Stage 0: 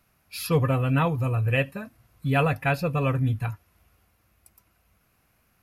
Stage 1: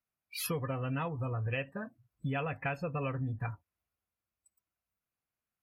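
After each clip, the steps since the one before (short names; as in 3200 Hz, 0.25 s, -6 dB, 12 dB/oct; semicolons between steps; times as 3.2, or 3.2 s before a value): spectral noise reduction 26 dB; low shelf 150 Hz -6.5 dB; compressor, threshold -32 dBFS, peak gain reduction 13.5 dB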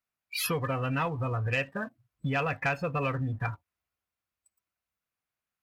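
bell 1900 Hz +5.5 dB 2.9 oct; sample leveller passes 1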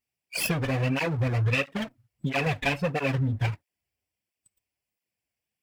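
minimum comb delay 0.39 ms; tape flanging out of phase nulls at 1.5 Hz, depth 6.6 ms; gain +7 dB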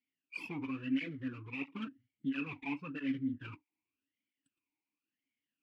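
reverse; compressor 10:1, threshold -33 dBFS, peak gain reduction 13 dB; reverse; vowel sweep i-u 0.94 Hz; gain +9.5 dB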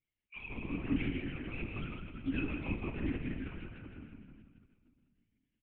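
on a send: feedback echo 0.159 s, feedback 58%, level -4 dB; on the sum: shoebox room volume 2400 m³, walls mixed, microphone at 1.7 m; LPC vocoder at 8 kHz whisper; gain -2.5 dB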